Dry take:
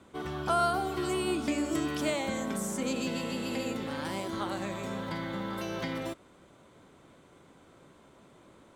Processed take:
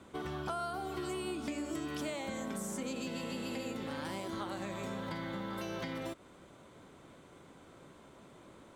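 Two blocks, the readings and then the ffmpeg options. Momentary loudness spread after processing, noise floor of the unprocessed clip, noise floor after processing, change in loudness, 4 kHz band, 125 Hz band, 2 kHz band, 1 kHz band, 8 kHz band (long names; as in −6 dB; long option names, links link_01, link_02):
18 LU, −58 dBFS, −58 dBFS, −6.5 dB, −6.5 dB, −5.5 dB, −6.0 dB, −8.0 dB, −6.5 dB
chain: -af "acompressor=threshold=-38dB:ratio=4,volume=1dB"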